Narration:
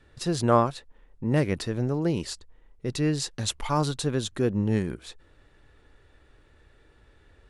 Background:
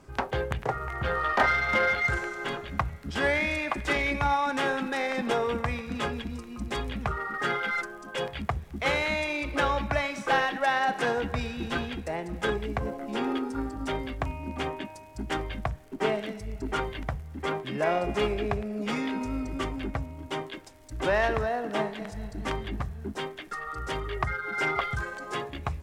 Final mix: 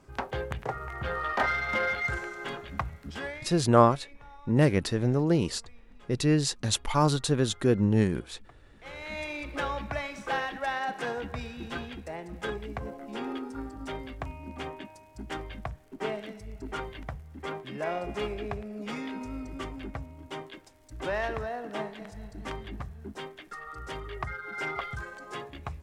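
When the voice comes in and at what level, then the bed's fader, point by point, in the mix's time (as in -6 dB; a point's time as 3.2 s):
3.25 s, +1.5 dB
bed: 3.07 s -4 dB
3.66 s -26.5 dB
8.68 s -26.5 dB
9.21 s -6 dB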